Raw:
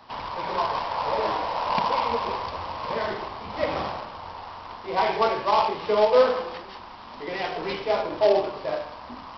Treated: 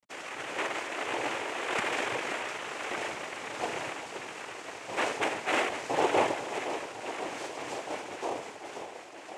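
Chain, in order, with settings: ending faded out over 2.82 s; low shelf 370 Hz -7.5 dB; bit-crush 7-bit; on a send: thinning echo 0.524 s, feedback 78%, high-pass 160 Hz, level -9.5 dB; on the sum: noise vocoder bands 4; gain -6 dB

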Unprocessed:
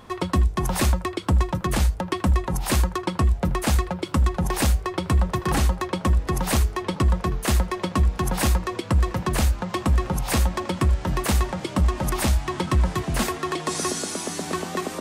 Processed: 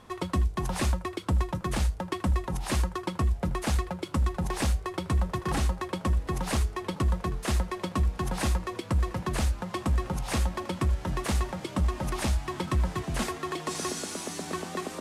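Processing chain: CVSD 64 kbps; gain -6 dB

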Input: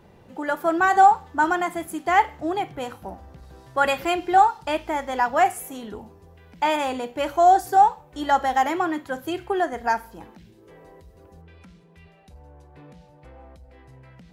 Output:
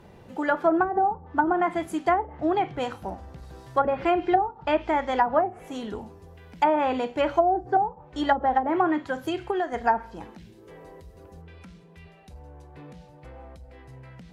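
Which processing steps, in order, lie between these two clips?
9.08–9.74 compressor, threshold -26 dBFS, peak gain reduction 8.5 dB; treble ducked by the level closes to 400 Hz, closed at -15 dBFS; reverb, pre-delay 3 ms, DRR 19 dB; gain +2 dB

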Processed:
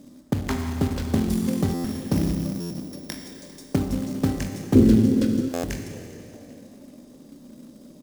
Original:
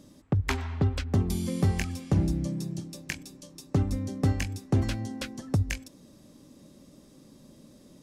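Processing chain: 1.69–3.27 sample sorter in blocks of 8 samples; fifteen-band EQ 100 Hz -4 dB, 250 Hz +9 dB, 630 Hz +4 dB, 2500 Hz -7 dB; Schroeder reverb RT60 2.4 s, combs from 25 ms, DRR 3.5 dB; short-mantissa float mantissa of 2-bit; 4.75–5.49 resonant low shelf 560 Hz +8 dB, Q 3; frequency-shifting echo 0.398 s, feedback 52%, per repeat +84 Hz, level -22.5 dB; stuck buffer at 1.74/2.6/5.53, samples 512, times 8

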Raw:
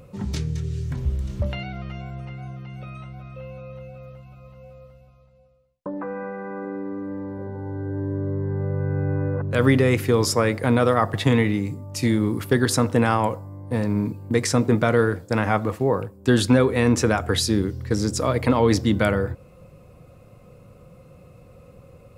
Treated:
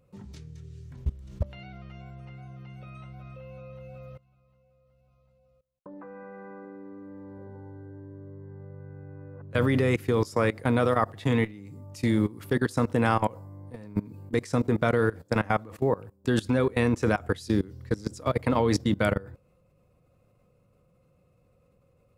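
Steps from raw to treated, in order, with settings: level quantiser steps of 21 dB; gain -1.5 dB

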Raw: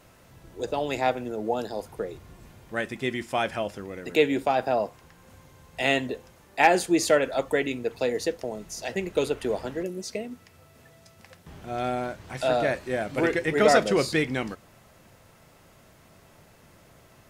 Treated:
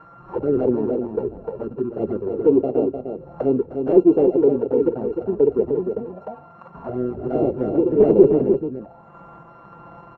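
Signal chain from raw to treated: sample sorter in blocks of 32 samples; HPF 86 Hz 6 dB/oct; in parallel at 0 dB: compressor 6:1, threshold -38 dBFS, peak gain reduction 22.5 dB; on the sum: transient shaper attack -1 dB, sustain +3 dB; envelope flanger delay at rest 6.9 ms, full sweep at -20 dBFS; tempo 1.7×; random-step tremolo; sine folder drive 12 dB, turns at -6.5 dBFS; echo 0.303 s -6.5 dB; envelope low-pass 410–1300 Hz down, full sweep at -20 dBFS; gain -6.5 dB

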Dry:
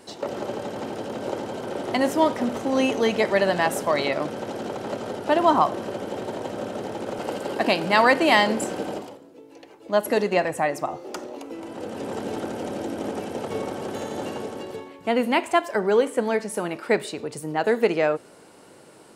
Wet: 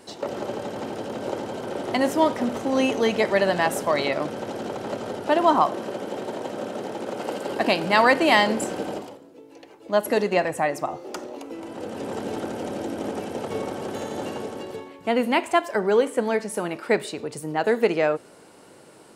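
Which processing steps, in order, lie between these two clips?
5.27–7.49 HPF 150 Hz 12 dB/oct

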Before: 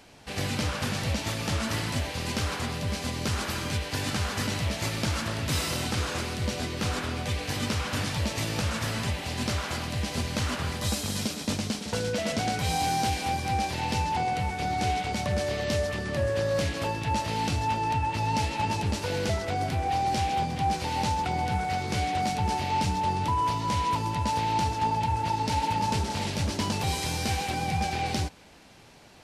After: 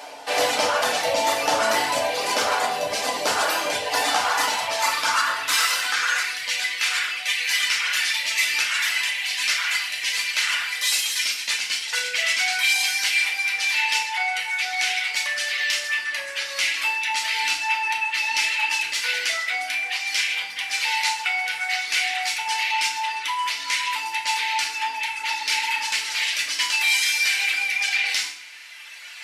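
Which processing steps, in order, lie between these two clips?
in parallel at -11 dB: soft clip -33.5 dBFS, distortion -7 dB; on the sum: reverb removal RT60 1.9 s; high-pass sweep 640 Hz -> 2100 Hz, 3.75–6.64; reverse; upward compressor, threshold -42 dBFS; reverse; FDN reverb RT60 0.63 s, low-frequency decay 1.2×, high-frequency decay 0.85×, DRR -0.5 dB; maximiser +16 dB; gain -8.5 dB

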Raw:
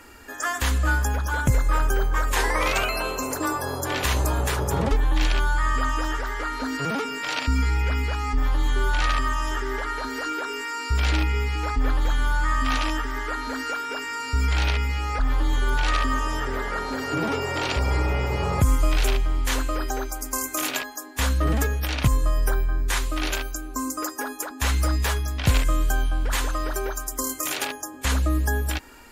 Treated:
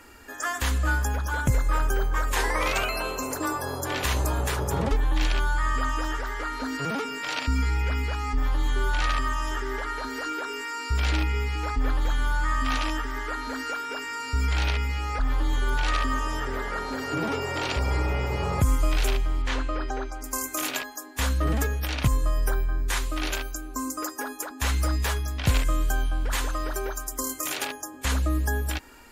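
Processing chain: 19.42–20.24 LPF 4000 Hz 12 dB/oct; gain -2.5 dB

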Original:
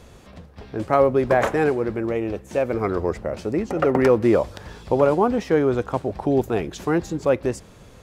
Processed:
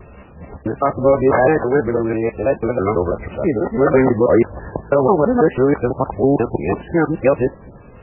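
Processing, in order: local time reversal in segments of 0.164 s; maximiser +8 dB; gain -2 dB; MP3 8 kbps 12000 Hz

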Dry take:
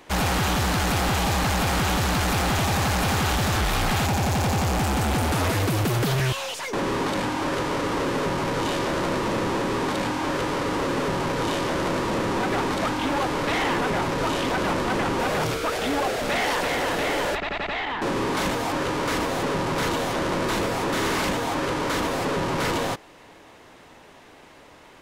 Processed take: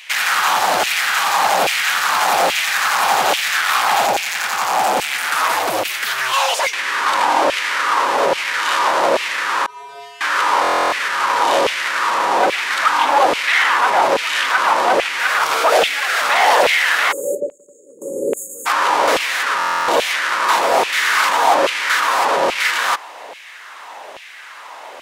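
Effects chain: 17.12–18.66 spectral delete 600–6500 Hz; dynamic EQ 170 Hz, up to +5 dB, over -38 dBFS, Q 0.83; in parallel at -1 dB: negative-ratio compressor -27 dBFS, ratio -1; on the sum: LFO high-pass saw down 1.2 Hz 540–2600 Hz; 9.66–10.21 resonator 140 Hz, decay 0.99 s, harmonics odd, mix 100%; stuck buffer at 10.62/19.58, samples 1024, times 12; gain +4 dB

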